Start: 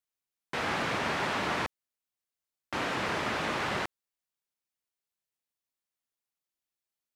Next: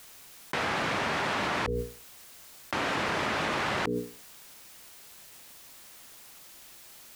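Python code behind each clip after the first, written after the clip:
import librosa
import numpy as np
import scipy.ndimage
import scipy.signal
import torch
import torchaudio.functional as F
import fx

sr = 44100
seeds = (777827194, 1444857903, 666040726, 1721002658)

y = fx.hum_notches(x, sr, base_hz=60, count=8)
y = fx.env_flatten(y, sr, amount_pct=100)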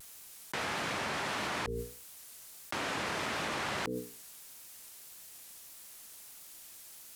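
y = fx.peak_eq(x, sr, hz=11000.0, db=9.0, octaves=1.8)
y = fx.vibrato(y, sr, rate_hz=1.6, depth_cents=63.0)
y = y * librosa.db_to_amplitude(-6.5)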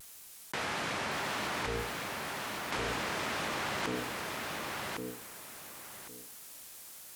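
y = fx.echo_feedback(x, sr, ms=1109, feedback_pct=22, wet_db=-3.5)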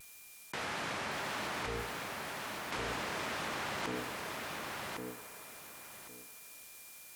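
y = fx.echo_wet_bandpass(x, sr, ms=79, feedback_pct=82, hz=990.0, wet_db=-12.0)
y = y + 10.0 ** (-56.0 / 20.0) * np.sin(2.0 * np.pi * 2400.0 * np.arange(len(y)) / sr)
y = y * librosa.db_to_amplitude(-3.5)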